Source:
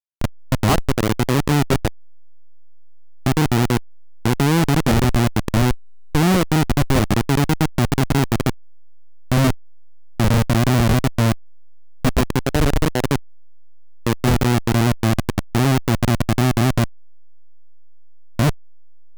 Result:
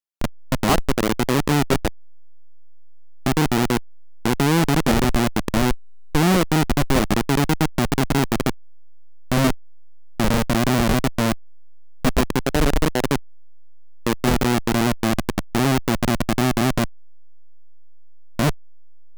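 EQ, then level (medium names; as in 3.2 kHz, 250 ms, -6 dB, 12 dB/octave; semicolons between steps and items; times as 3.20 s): peaking EQ 100 Hz -14 dB 0.57 oct; 0.0 dB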